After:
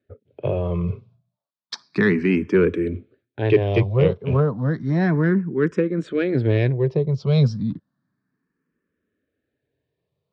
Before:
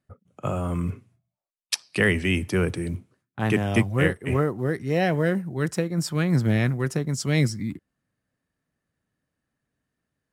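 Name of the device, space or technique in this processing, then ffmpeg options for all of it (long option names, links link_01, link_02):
barber-pole phaser into a guitar amplifier: -filter_complex "[0:a]asettb=1/sr,asplit=3[link_01][link_02][link_03];[link_01]atrim=end=6.724[link_04];[link_02]atrim=start=6.72:end=7.27,asetpts=PTS-STARTPTS,afade=type=in:duration=0.004:curve=qsin,afade=type=out:start_time=0.546:duration=0.004:curve=qsin,highshelf=frequency=2100:gain=-9[link_05];[link_03]atrim=start=7.266[link_06];[link_04][link_05]acrossfade=duration=0.004:curve1=hsin:curve2=qsin[link_07];[link_07][link_06]acrossfade=duration=0.004:curve1=qsin:curve2=hsin,asplit=2[link_08][link_09];[link_09]afreqshift=0.32[link_10];[link_08][link_10]amix=inputs=2:normalize=1,asoftclip=type=tanh:threshold=-14.5dB,highpass=98,equalizer=frequency=420:width_type=q:width=4:gain=6,equalizer=frequency=770:width_type=q:width=4:gain=-8,equalizer=frequency=1300:width_type=q:width=4:gain=-4,equalizer=frequency=2000:width_type=q:width=4:gain=-7,equalizer=frequency=2900:width_type=q:width=4:gain=-7,lowpass=frequency=3800:width=0.5412,lowpass=frequency=3800:width=1.3066,volume=8dB"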